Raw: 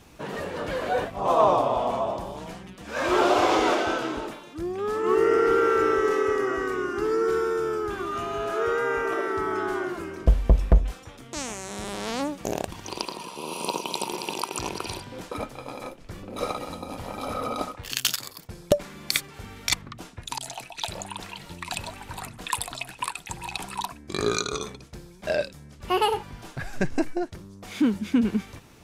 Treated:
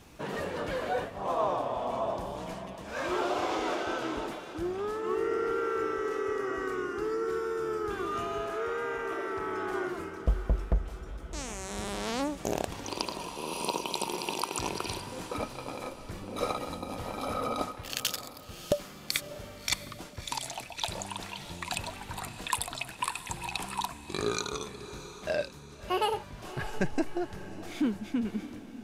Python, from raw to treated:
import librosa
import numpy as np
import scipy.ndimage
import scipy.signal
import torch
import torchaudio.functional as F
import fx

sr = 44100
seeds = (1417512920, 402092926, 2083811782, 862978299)

p1 = fx.rider(x, sr, range_db=4, speed_s=0.5)
p2 = p1 + fx.echo_diffused(p1, sr, ms=642, feedback_pct=47, wet_db=-13, dry=0)
p3 = fx.transformer_sat(p2, sr, knee_hz=680.0, at=(8.45, 9.73))
y = p3 * librosa.db_to_amplitude(-6.0)